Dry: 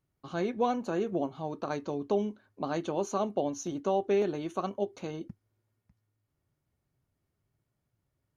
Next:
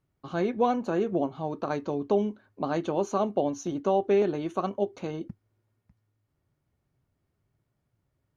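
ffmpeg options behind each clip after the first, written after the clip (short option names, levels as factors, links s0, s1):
-af "highshelf=f=4300:g=-8,volume=1.58"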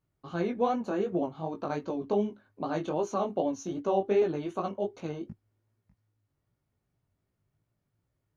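-af "flanger=delay=17:depth=4.3:speed=2.6"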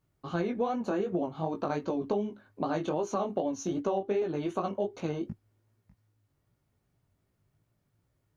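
-af "acompressor=threshold=0.0282:ratio=6,volume=1.68"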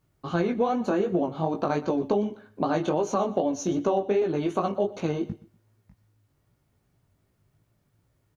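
-af "aecho=1:1:121|242:0.126|0.0315,volume=1.88"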